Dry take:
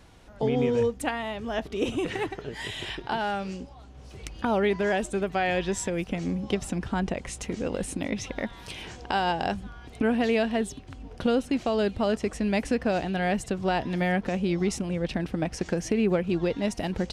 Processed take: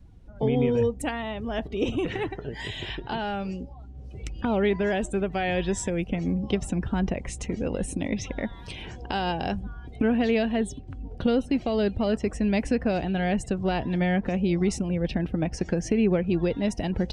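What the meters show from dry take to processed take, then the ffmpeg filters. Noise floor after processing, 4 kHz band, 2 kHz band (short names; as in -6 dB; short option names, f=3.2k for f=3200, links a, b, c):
-43 dBFS, -1.0 dB, -1.5 dB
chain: -filter_complex "[0:a]acrossover=split=740|1500[a][b][c];[b]asoftclip=type=tanh:threshold=-38.5dB[d];[a][d][c]amix=inputs=3:normalize=0,lowshelf=f=160:g=7,afftdn=nr=16:nf=-47"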